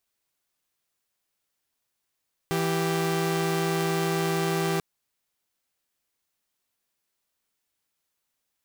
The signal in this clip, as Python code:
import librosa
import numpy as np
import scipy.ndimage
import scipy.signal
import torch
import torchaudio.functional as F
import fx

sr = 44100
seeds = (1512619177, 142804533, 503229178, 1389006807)

y = fx.chord(sr, length_s=2.29, notes=(52, 67), wave='saw', level_db=-24.0)